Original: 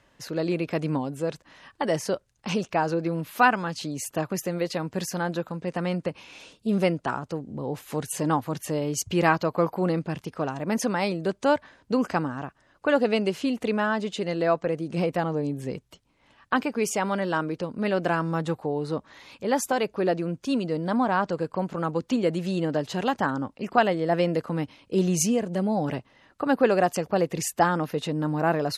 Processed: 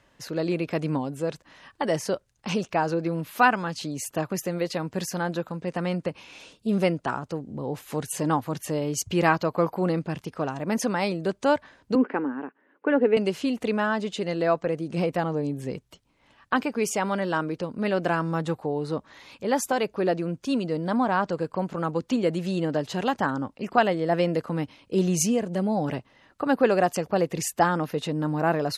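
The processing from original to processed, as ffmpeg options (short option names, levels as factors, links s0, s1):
-filter_complex "[0:a]asettb=1/sr,asplit=3[s0][s1][s2];[s0]atrim=end=11.954[s3];[s1]atrim=start=11.95:end=13.17,asetpts=PTS-STARTPTS,afade=t=in:d=0.004:c=qsin,afade=t=out:st=1.216:d=0.004:c=qsin,highpass=f=240:w=0.5412,highpass=f=240:w=1.3066,equalizer=f=260:t=q:w=4:g=6,equalizer=f=430:t=q:w=4:g=7,equalizer=f=670:t=q:w=4:g=-9,equalizer=f=1200:t=q:w=4:g=-6,lowpass=f=2300:w=0.5412,lowpass=f=2300:w=1.3066[s4];[s2]atrim=start=13.166[s5];[s3][s4]acrossfade=d=0.004:c1=hsin:c2=qsin[s6];[s6][s5]acrossfade=d=0.004:c1=qsin:c2=hsin"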